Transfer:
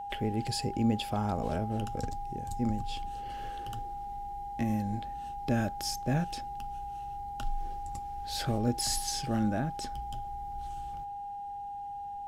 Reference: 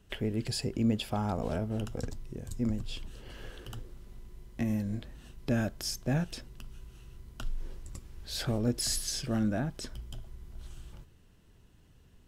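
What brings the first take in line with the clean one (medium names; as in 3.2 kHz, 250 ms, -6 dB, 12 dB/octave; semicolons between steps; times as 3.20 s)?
band-stop 810 Hz, Q 30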